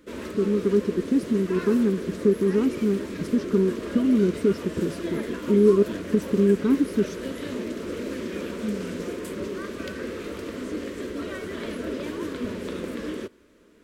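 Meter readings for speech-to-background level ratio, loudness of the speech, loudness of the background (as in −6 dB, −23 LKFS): 9.5 dB, −23.5 LKFS, −33.0 LKFS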